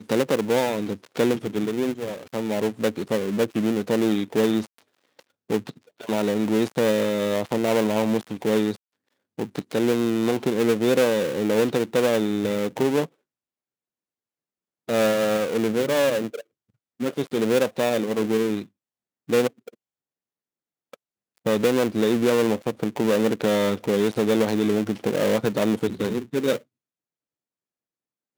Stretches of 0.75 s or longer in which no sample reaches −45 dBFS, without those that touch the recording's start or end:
0:13.07–0:14.88
0:19.74–0:20.93

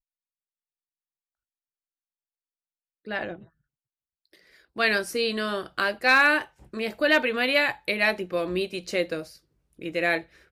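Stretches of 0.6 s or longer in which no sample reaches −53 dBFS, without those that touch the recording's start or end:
0:03.48–0:04.25

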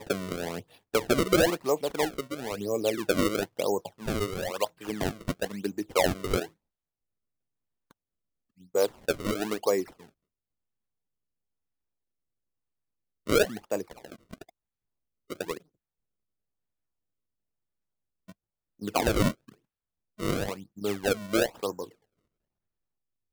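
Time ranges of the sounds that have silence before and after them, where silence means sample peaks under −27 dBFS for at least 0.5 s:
0:08.75–0:09.82
0:13.30–0:13.82
0:15.32–0:15.52
0:18.84–0:19.31
0:20.23–0:21.83

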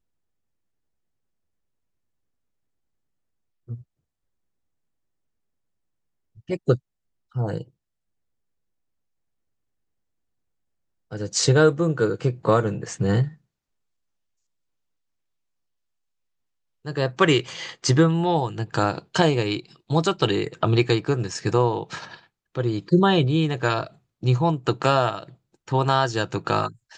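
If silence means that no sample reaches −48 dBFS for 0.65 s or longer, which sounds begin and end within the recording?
0:03.68–0:03.82
0:06.37–0:07.68
0:11.11–0:13.36

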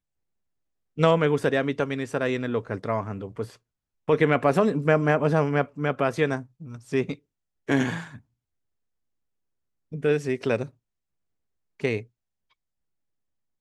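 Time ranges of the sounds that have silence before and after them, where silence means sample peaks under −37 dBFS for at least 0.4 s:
0:00.98–0:03.50
0:04.09–0:07.14
0:07.68–0:08.17
0:09.92–0:10.66
0:11.80–0:12.02

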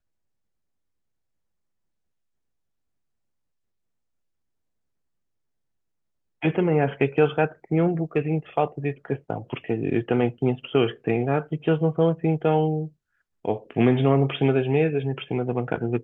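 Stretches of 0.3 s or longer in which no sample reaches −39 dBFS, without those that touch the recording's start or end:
0:12.88–0:13.45

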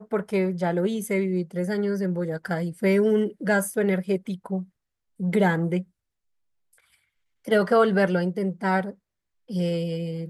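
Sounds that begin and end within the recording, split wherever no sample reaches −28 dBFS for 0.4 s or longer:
0:05.20–0:05.81
0:07.48–0:08.90

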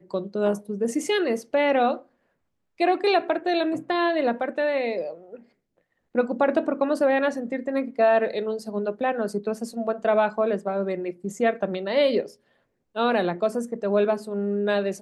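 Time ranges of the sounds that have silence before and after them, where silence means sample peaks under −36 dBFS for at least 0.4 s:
0:02.80–0:05.36
0:06.15–0:12.30

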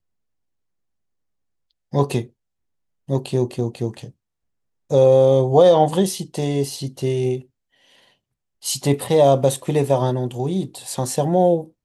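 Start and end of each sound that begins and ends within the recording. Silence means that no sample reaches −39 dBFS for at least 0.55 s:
0:01.93–0:02.27
0:03.08–0:04.10
0:04.90–0:07.42

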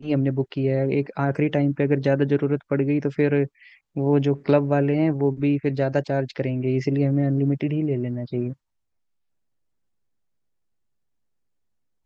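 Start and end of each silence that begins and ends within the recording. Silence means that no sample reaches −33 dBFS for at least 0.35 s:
0:03.46–0:03.96

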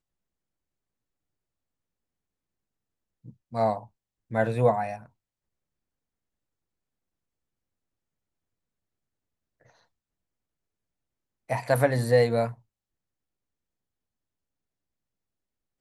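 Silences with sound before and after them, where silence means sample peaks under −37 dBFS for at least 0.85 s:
0:05.02–0:11.50

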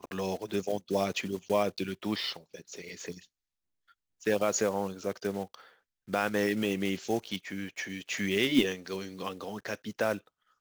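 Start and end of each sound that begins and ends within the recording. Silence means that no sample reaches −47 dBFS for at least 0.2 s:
0:04.21–0:05.66
0:06.08–0:10.27

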